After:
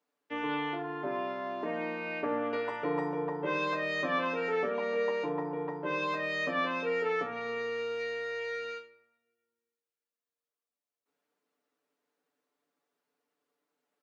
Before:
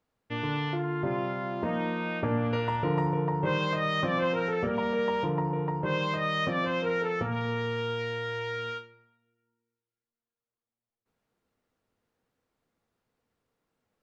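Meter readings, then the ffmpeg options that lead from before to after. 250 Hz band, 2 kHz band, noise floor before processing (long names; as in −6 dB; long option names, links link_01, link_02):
−6.0 dB, −1.0 dB, below −85 dBFS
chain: -af "highpass=frequency=240:width=0.5412,highpass=frequency=240:width=1.3066,aecho=1:1:6.9:0.95,volume=-5dB"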